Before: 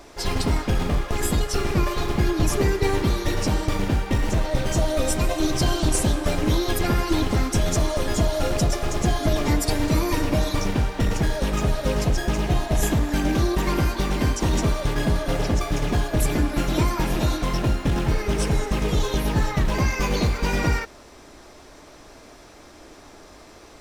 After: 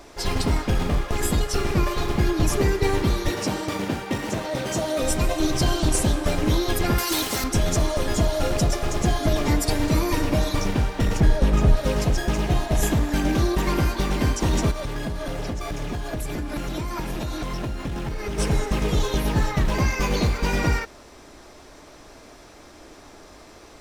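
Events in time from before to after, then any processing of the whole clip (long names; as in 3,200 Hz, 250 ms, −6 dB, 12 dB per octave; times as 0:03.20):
0:03.30–0:05.02: high-pass filter 160 Hz
0:06.98–0:07.44: RIAA equalisation recording
0:11.20–0:11.77: spectral tilt −1.5 dB per octave
0:14.71–0:18.38: downward compressor 12 to 1, threshold −24 dBFS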